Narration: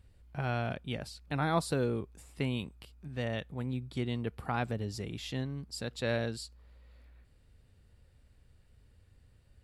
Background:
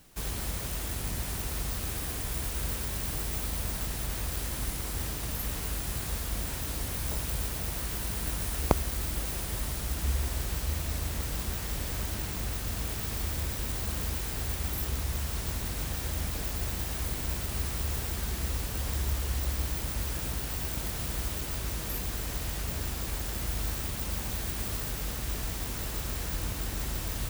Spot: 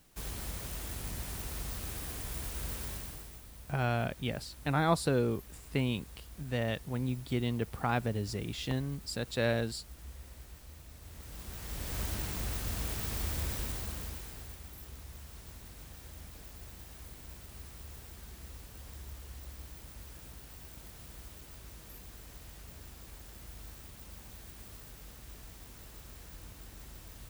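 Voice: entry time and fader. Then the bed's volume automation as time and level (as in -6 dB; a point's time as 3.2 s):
3.35 s, +2.0 dB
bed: 2.91 s -6 dB
3.44 s -19.5 dB
10.97 s -19.5 dB
12 s -2.5 dB
13.57 s -2.5 dB
14.66 s -16 dB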